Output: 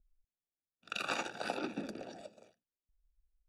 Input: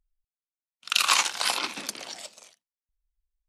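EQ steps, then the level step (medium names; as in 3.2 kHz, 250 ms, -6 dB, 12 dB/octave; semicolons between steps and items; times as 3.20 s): boxcar filter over 42 samples; +5.0 dB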